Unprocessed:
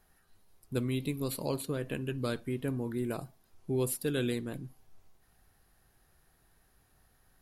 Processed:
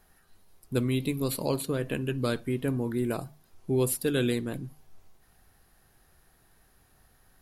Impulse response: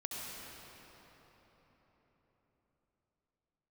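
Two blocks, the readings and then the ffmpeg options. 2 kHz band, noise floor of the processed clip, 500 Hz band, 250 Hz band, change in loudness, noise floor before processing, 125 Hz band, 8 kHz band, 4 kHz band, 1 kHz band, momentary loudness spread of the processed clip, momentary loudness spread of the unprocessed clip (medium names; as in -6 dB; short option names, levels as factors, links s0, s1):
+5.0 dB, -64 dBFS, +5.0 dB, +5.0 dB, +5.0 dB, -69 dBFS, +4.5 dB, +5.0 dB, +5.0 dB, +5.0 dB, 10 LU, 10 LU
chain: -af "bandreject=f=50:t=h:w=6,bandreject=f=100:t=h:w=6,bandreject=f=150:t=h:w=6,volume=1.78"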